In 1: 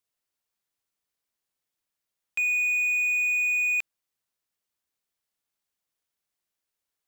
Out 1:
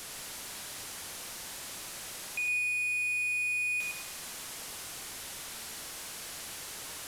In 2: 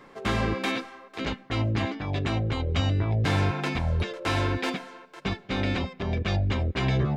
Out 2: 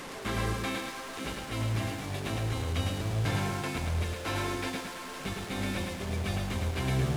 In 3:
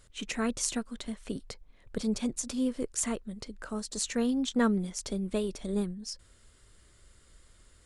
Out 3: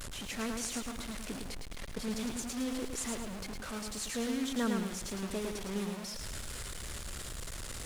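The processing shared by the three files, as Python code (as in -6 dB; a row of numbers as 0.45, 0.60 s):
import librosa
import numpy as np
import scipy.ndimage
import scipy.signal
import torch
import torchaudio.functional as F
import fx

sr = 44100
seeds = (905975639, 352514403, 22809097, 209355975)

y = fx.delta_mod(x, sr, bps=64000, step_db=-29.0)
y = fx.echo_crushed(y, sr, ms=108, feedback_pct=35, bits=8, wet_db=-3.5)
y = y * librosa.db_to_amplitude(-7.0)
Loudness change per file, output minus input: -11.0, -5.0, -5.0 LU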